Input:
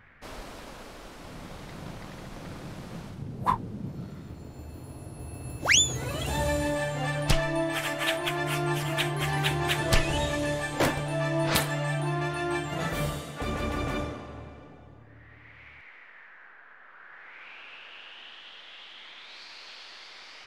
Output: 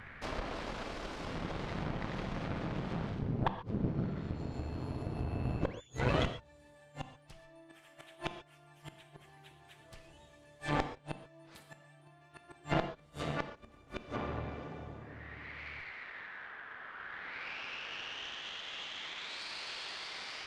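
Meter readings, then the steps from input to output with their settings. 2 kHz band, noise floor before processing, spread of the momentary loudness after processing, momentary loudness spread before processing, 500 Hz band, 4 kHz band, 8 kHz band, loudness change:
-11.0 dB, -51 dBFS, 21 LU, 19 LU, -9.5 dB, -11.5 dB, -24.0 dB, -11.5 dB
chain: flipped gate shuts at -21 dBFS, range -37 dB; in parallel at -1.5 dB: compressor, threshold -54 dBFS, peak gain reduction 23 dB; on the sum: treble ducked by the level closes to 2600 Hz, closed at -34.5 dBFS; added harmonics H 4 -11 dB, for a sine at -20 dBFS; non-linear reverb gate 0.16 s flat, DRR 8.5 dB; gain +1 dB

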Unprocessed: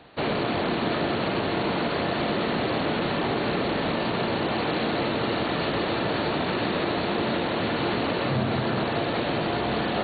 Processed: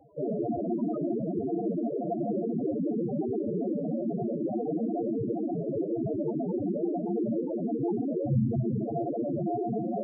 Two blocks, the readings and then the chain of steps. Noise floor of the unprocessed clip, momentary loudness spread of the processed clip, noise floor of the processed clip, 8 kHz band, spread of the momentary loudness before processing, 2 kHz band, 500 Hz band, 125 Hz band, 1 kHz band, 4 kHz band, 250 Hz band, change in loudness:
-28 dBFS, 2 LU, -33 dBFS, n/a, 1 LU, under -40 dB, -4.0 dB, -3.0 dB, -11.5 dB, under -40 dB, -1.0 dB, -4.5 dB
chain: requantised 8-bit, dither none; loudest bins only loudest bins 4; gain +3 dB

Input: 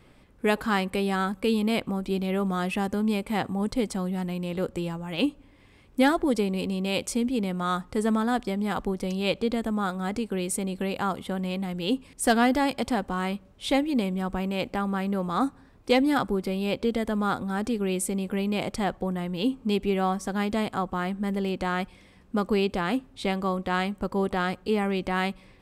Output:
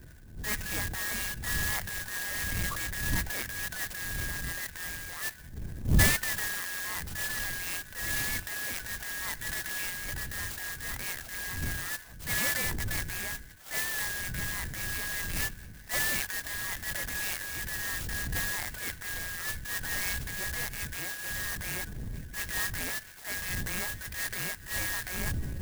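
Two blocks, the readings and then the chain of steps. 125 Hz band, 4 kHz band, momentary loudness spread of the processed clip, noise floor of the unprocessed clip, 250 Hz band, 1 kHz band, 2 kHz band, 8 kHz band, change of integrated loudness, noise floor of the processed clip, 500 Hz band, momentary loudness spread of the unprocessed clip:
-4.0 dB, -2.0 dB, 7 LU, -55 dBFS, -18.5 dB, -14.5 dB, +2.0 dB, +6.0 dB, -4.5 dB, -48 dBFS, -19.0 dB, 6 LU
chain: four-band scrambler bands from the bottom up 2143; wind noise 93 Hz -30 dBFS; high shelf 9400 Hz -8.5 dB; thin delay 0.695 s, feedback 65%, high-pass 2100 Hz, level -22 dB; transient shaper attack -10 dB, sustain +5 dB; clock jitter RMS 0.086 ms; gain -7 dB

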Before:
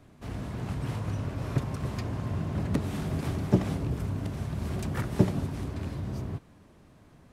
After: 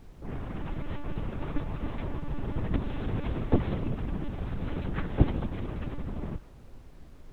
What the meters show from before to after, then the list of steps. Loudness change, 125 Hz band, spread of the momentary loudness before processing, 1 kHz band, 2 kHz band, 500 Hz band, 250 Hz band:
-2.0 dB, -3.0 dB, 9 LU, -0.5 dB, -1.0 dB, -1.0 dB, -2.0 dB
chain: monotone LPC vocoder at 8 kHz 290 Hz; low-pass opened by the level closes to 490 Hz, open at -26 dBFS; added noise brown -48 dBFS

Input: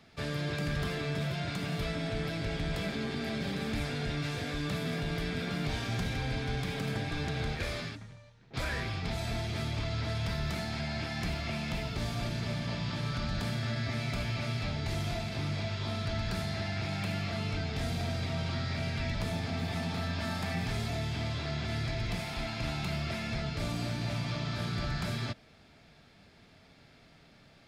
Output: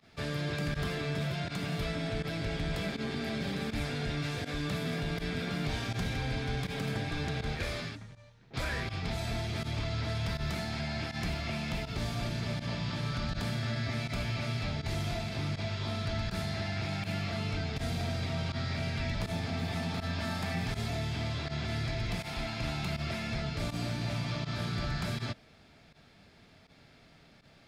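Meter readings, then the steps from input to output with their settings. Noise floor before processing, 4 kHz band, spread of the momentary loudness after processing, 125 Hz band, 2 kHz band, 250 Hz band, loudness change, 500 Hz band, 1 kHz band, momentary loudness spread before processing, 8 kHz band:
-59 dBFS, 0.0 dB, 1 LU, 0.0 dB, 0.0 dB, 0.0 dB, 0.0 dB, 0.0 dB, 0.0 dB, 1 LU, 0.0 dB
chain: pump 81 bpm, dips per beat 1, -18 dB, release 62 ms

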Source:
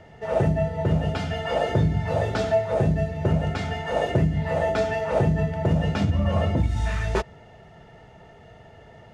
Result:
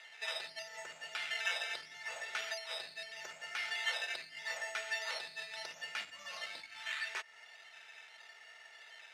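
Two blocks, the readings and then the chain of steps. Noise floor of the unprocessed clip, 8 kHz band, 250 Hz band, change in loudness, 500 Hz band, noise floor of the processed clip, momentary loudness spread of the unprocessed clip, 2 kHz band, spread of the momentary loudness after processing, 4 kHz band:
-49 dBFS, n/a, under -40 dB, -15.5 dB, -26.5 dB, -58 dBFS, 5 LU, -4.0 dB, 18 LU, -1.5 dB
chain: compressor, threshold -28 dBFS, peak gain reduction 11.5 dB; decimation with a swept rate 8×, swing 60% 0.79 Hz; ladder band-pass 2700 Hz, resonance 30%; gain +13.5 dB

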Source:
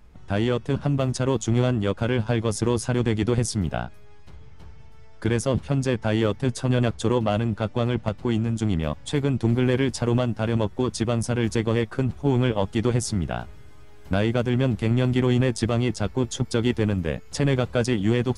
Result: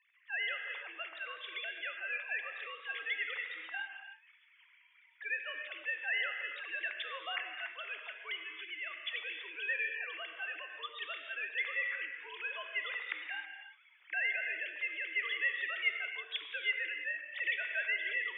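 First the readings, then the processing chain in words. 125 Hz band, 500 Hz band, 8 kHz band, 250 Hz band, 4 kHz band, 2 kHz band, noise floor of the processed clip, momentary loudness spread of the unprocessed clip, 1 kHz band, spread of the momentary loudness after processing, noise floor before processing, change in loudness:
under -40 dB, -27.5 dB, under -40 dB, under -40 dB, -6.5 dB, +1.5 dB, -65 dBFS, 5 LU, -16.0 dB, 9 LU, -42 dBFS, -12.5 dB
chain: sine-wave speech; resonant high-pass 2000 Hz, resonance Q 3.7; frequency shift +94 Hz; non-linear reverb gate 0.35 s flat, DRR 4 dB; gain -7 dB

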